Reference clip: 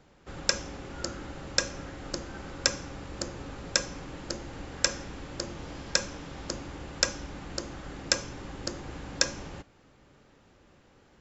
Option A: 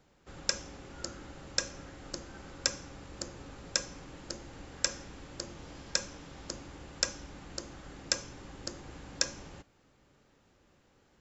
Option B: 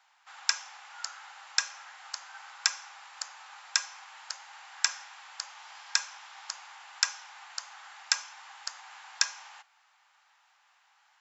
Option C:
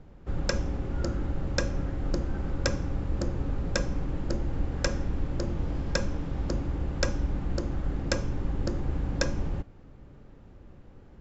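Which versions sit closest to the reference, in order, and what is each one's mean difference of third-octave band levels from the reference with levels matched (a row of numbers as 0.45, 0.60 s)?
A, C, B; 1.5, 5.0, 13.0 dB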